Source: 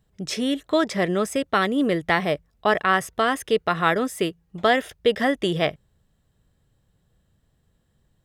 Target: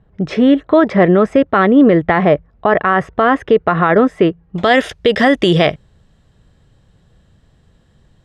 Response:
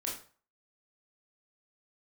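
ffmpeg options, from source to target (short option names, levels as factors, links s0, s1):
-af "asetnsamples=n=441:p=0,asendcmd='4.56 lowpass f 6200',lowpass=1600,alimiter=level_in=5.62:limit=0.891:release=50:level=0:latency=1,volume=0.891"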